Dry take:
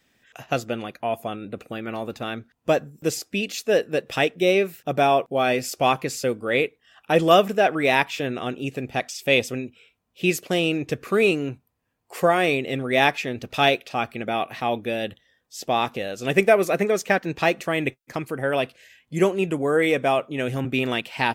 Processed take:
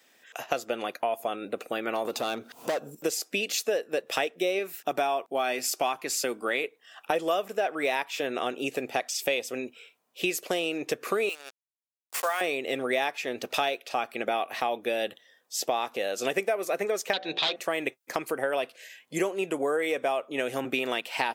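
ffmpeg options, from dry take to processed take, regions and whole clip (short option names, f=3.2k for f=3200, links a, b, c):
-filter_complex "[0:a]asettb=1/sr,asplit=3[a][b][c];[a]atrim=end=2.054[d];[b]atrim=start=2.05:end=2.95,asetpts=PTS-STARTPTS,afade=t=in:d=0.004:c=qsin,afade=t=out:st=0.896:d=0.004:c=qsin,equalizer=f=1.8k:w=2.9:g=-10,acompressor=mode=upward:threshold=-24dB:ratio=2.5:attack=3.2:release=140:knee=2.83:detection=peak,volume=24.5dB,asoftclip=hard,volume=-24.5dB[e];[c]atrim=start=2.946[f];[d][e]acrossfade=d=0.004:c1=hsin:c2=qsin[g];[g][f]acrossfade=d=0.004:c1=qsin:c2=hsin,asettb=1/sr,asplit=3[h][i][j];[h]atrim=end=4.594[k];[i]atrim=start=4.59:end=6.64,asetpts=PTS-STARTPTS,afade=t=in:d=0.004:c=qsin,afade=t=out:st=2.046:d=0.004:c=qsin,highpass=130,equalizer=f=510:t=o:w=0.43:g=-8.5[l];[j]atrim=start=6.636[m];[k][l]acrossfade=d=0.004:c1=hsin:c2=qsin[n];[n][m]acrossfade=d=0.004:c1=qsin:c2=hsin,asettb=1/sr,asplit=3[o][p][q];[o]atrim=end=11.294[r];[p]atrim=start=11.29:end=12.41,asetpts=PTS-STARTPTS,afade=t=in:d=0.004:c=qsin,afade=t=out:st=1.116:d=0.004:c=qsin,highpass=1.1k,acrusher=bits=5:mix=0:aa=0.5[s];[q]atrim=start=12.406[t];[r][s]acrossfade=d=0.004:c1=hsin:c2=qsin[u];[u][t]acrossfade=d=0.004:c1=qsin:c2=hsin,asettb=1/sr,asplit=3[v][w][x];[v]atrim=end=17.134[y];[w]atrim=start=17.13:end=17.56,asetpts=PTS-STARTPTS,afade=t=in:d=0.004:c=qsin,afade=t=out:st=0.426:d=0.004:c=qsin,bandreject=f=57.81:t=h:w=4,bandreject=f=115.62:t=h:w=4,bandreject=f=173.43:t=h:w=4,bandreject=f=231.24:t=h:w=4,bandreject=f=289.05:t=h:w=4,bandreject=f=346.86:t=h:w=4,bandreject=f=404.67:t=h:w=4,bandreject=f=462.48:t=h:w=4,bandreject=f=520.29:t=h:w=4,bandreject=f=578.1:t=h:w=4,bandreject=f=635.91:t=h:w=4,bandreject=f=693.72:t=h:w=4,bandreject=f=751.53:t=h:w=4,aeval=exprs='0.126*(abs(mod(val(0)/0.126+3,4)-2)-1)':c=same,lowpass=f=3.7k:t=q:w=7.6[z];[x]atrim=start=17.556[aa];[y][z]acrossfade=d=0.004:c1=hsin:c2=qsin[ab];[ab][aa]acrossfade=d=0.004:c1=qsin:c2=hsin,highpass=480,equalizer=f=2.2k:t=o:w=2.8:g=-4.5,acompressor=threshold=-33dB:ratio=6,volume=8dB"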